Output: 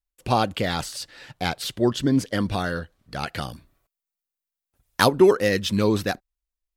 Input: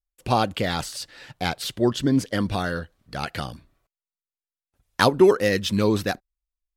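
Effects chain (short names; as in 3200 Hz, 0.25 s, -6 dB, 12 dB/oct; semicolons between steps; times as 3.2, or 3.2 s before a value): 3.41–5.09 high shelf 11000 Hz +11 dB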